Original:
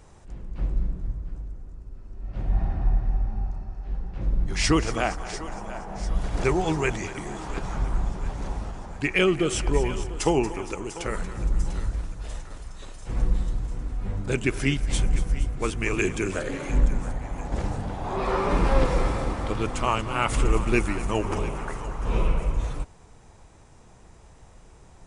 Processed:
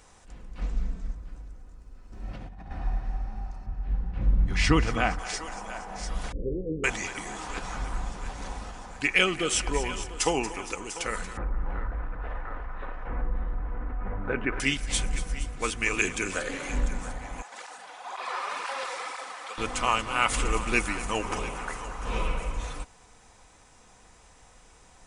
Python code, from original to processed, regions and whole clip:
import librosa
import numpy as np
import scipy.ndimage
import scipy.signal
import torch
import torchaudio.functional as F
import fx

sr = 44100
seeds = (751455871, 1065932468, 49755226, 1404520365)

y = fx.chain(x, sr, fx.lowpass_res(hz=7100.0, q=1.7),
    fx.comb(ms=4.5, depth=0.77),
    fx.doppler_dist(depth_ms=0.37), at=(0.61, 1.15))
y = fx.chain(y, sr, fx.highpass(hz=160.0, slope=6),
    fx.over_compress(threshold_db=-41.0, ratio=-1.0),
    fx.low_shelf(hz=250.0, db=11.0), at=(2.12, 2.71))
y = fx.chain(y, sr, fx.highpass(hz=41.0, slope=12),
    fx.bass_treble(bass_db=12, treble_db=-12), at=(3.66, 5.19))
y = fx.chain(y, sr, fx.steep_lowpass(hz=550.0, slope=96),
    fx.doubler(ms=44.0, db=-13.0), at=(6.32, 6.84))
y = fx.chain(y, sr, fx.lowpass(hz=1700.0, slope=24),
    fx.peak_eq(hz=140.0, db=-5.5, octaves=2.0),
    fx.env_flatten(amount_pct=50), at=(11.37, 14.6))
y = fx.chain(y, sr, fx.highpass(hz=810.0, slope=12),
    fx.flanger_cancel(hz=2.0, depth_ms=5.1), at=(17.42, 19.58))
y = fx.tilt_shelf(y, sr, db=-6.0, hz=690.0)
y = y + 0.32 * np.pad(y, (int(4.0 * sr / 1000.0), 0))[:len(y)]
y = F.gain(torch.from_numpy(y), -2.5).numpy()